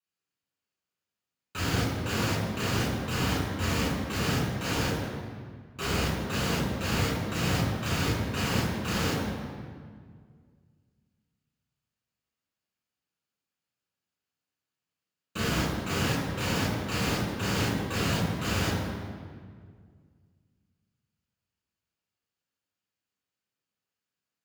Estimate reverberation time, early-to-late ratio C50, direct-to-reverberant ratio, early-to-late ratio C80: 1.9 s, 0.5 dB, −5.0 dB, 2.5 dB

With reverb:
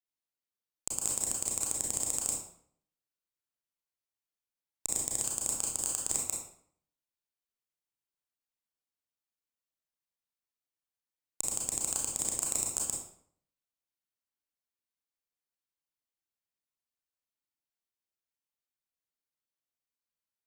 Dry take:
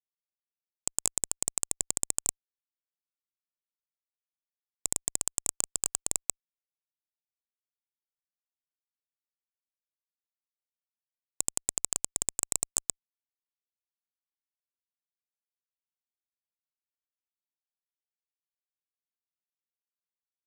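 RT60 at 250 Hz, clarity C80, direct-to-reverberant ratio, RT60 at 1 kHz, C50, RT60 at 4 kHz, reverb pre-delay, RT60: 0.65 s, 6.5 dB, −2.5 dB, 0.60 s, 2.0 dB, 0.50 s, 28 ms, 0.60 s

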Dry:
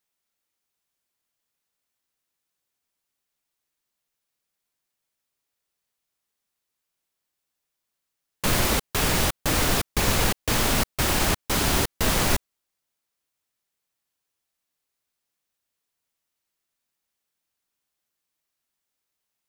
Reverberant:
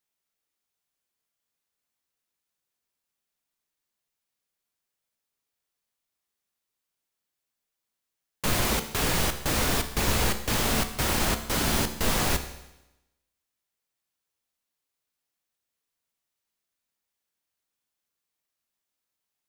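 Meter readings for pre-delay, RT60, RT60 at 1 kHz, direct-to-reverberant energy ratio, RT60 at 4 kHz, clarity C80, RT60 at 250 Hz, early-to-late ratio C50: 14 ms, 0.95 s, 0.95 s, 7.5 dB, 0.95 s, 13.0 dB, 0.95 s, 11.0 dB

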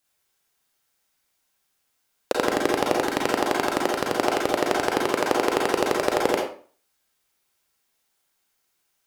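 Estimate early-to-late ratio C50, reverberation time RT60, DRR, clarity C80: 2.5 dB, 0.40 s, −2.0 dB, 8.0 dB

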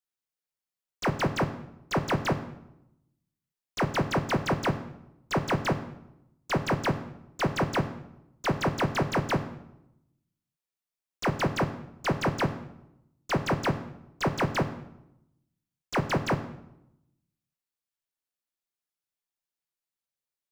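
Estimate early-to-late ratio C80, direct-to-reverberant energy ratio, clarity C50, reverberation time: 14.5 dB, 8.0 dB, 12.5 dB, 0.85 s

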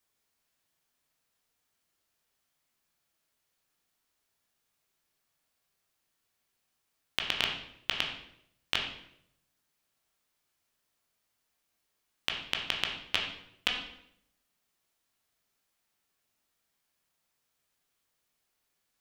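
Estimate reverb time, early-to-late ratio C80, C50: 0.75 s, 8.0 dB, 5.5 dB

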